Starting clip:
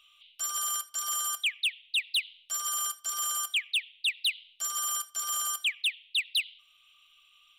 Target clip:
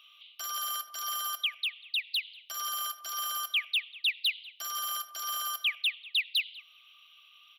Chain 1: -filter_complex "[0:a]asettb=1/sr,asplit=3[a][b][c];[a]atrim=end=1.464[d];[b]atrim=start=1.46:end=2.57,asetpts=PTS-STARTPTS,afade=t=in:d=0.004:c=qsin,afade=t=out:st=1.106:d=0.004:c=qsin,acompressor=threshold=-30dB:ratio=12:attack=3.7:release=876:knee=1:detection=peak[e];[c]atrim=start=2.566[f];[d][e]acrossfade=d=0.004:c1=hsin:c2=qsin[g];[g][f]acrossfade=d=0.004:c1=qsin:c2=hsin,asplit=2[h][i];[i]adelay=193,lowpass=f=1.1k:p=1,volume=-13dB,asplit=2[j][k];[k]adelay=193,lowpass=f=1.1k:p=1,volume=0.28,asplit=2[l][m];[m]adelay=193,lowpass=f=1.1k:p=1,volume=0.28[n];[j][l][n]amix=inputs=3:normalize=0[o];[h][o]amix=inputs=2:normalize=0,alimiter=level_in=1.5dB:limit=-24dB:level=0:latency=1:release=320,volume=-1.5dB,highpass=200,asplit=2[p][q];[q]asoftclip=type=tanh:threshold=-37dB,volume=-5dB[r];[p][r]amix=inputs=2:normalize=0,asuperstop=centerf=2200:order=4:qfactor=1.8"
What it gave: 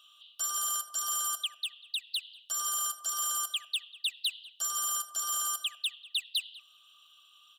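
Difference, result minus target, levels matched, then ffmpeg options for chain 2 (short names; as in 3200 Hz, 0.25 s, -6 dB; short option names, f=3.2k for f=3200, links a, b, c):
8000 Hz band +10.0 dB; soft clip: distortion +11 dB
-filter_complex "[0:a]asettb=1/sr,asplit=3[a][b][c];[a]atrim=end=1.464[d];[b]atrim=start=1.46:end=2.57,asetpts=PTS-STARTPTS,afade=t=in:d=0.004:c=qsin,afade=t=out:st=1.106:d=0.004:c=qsin,acompressor=threshold=-30dB:ratio=12:attack=3.7:release=876:knee=1:detection=peak[e];[c]atrim=start=2.566[f];[d][e]acrossfade=d=0.004:c1=hsin:c2=qsin[g];[g][f]acrossfade=d=0.004:c1=qsin:c2=hsin,asplit=2[h][i];[i]adelay=193,lowpass=f=1.1k:p=1,volume=-13dB,asplit=2[j][k];[k]adelay=193,lowpass=f=1.1k:p=1,volume=0.28,asplit=2[l][m];[m]adelay=193,lowpass=f=1.1k:p=1,volume=0.28[n];[j][l][n]amix=inputs=3:normalize=0[o];[h][o]amix=inputs=2:normalize=0,alimiter=level_in=1.5dB:limit=-24dB:level=0:latency=1:release=320,volume=-1.5dB,highpass=200,asplit=2[p][q];[q]asoftclip=type=tanh:threshold=-27.5dB,volume=-5dB[r];[p][r]amix=inputs=2:normalize=0,asuperstop=centerf=8100:order=4:qfactor=1.8"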